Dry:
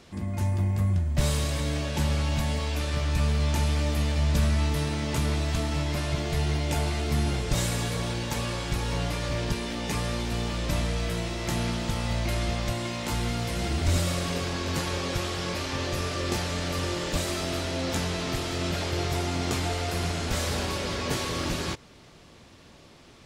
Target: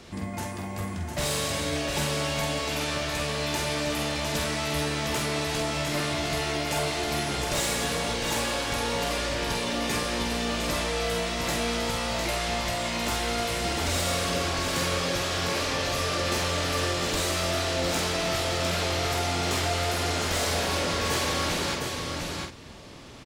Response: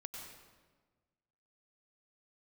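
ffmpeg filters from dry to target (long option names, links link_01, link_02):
-filter_complex "[0:a]aecho=1:1:705:0.473,acrossover=split=300[link_01][link_02];[link_01]acompressor=threshold=-41dB:ratio=4[link_03];[link_02]asoftclip=type=tanh:threshold=-27dB[link_04];[link_03][link_04]amix=inputs=2:normalize=0,asplit=2[link_05][link_06];[link_06]adelay=47,volume=-5dB[link_07];[link_05][link_07]amix=inputs=2:normalize=0,volume=4.5dB"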